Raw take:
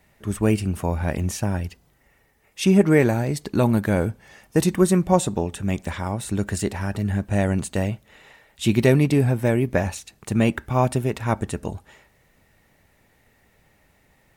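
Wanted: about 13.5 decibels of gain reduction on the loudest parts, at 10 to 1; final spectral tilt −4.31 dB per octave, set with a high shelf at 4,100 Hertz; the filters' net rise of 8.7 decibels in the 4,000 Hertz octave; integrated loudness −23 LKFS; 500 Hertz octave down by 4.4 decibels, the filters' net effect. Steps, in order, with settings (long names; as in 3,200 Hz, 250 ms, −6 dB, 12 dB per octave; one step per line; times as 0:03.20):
parametric band 500 Hz −6 dB
parametric band 4,000 Hz +7 dB
high-shelf EQ 4,100 Hz +7 dB
downward compressor 10 to 1, threshold −27 dBFS
level +9 dB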